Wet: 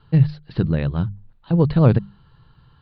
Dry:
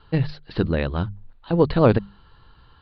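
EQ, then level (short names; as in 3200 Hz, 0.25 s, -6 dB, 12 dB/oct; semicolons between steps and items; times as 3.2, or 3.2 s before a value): bell 140 Hz +13.5 dB 1 oct; -4.5 dB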